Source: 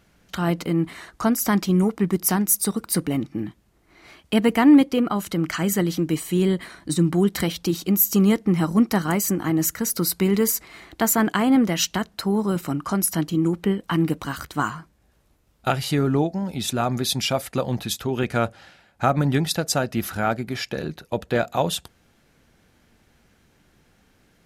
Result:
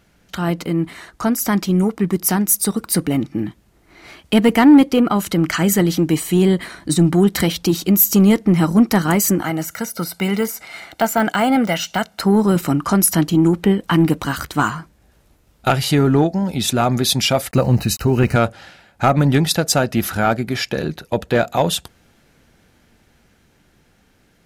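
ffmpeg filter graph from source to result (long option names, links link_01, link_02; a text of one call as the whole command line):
ffmpeg -i in.wav -filter_complex "[0:a]asettb=1/sr,asplit=3[link_01][link_02][link_03];[link_01]atrim=end=9.424[link_04];[link_02]atrim=start=9.42:end=12.2,asetpts=PTS-STARTPTS,afade=type=in:duration=0.004:curve=qsin,afade=type=out:start_time=2.776:duration=0.004:curve=qsin,aecho=1:1:1.4:0.55,atrim=end_sample=122598,deesser=0.8,highpass=frequency=400:poles=1[link_05];[link_03]atrim=start=12.196[link_06];[link_04][link_05]acrossfade=duration=0.004:curve1=hsin:curve2=qsin[link_07];[link_07][link_06]acrossfade=duration=0.004:curve1=qsin:curve2=hsin,asettb=1/sr,asplit=3[link_08][link_09][link_10];[link_08]atrim=end=17.514[link_11];[link_09]atrim=start=17.51:end=18.36,asetpts=PTS-STARTPTS,afade=type=in:duration=0.004:curve=qsin,afade=type=out:start_time=0.846:duration=0.004:curve=qsin,lowshelf=frequency=140:gain=12,aeval=exprs='val(0)*gte(abs(val(0)),0.00708)':channel_layout=same,asuperstop=centerf=3400:order=12:qfactor=4.7[link_12];[link_10]atrim=start=18.356[link_13];[link_11][link_12]acrossfade=duration=0.004:curve1=hsin:curve2=qsin[link_14];[link_14][link_13]acrossfade=duration=0.004:curve1=qsin:curve2=hsin,dynaudnorm=framelen=460:gausssize=13:maxgain=11.5dB,bandreject=frequency=1100:width=24,acontrast=41,volume=-3dB" out.wav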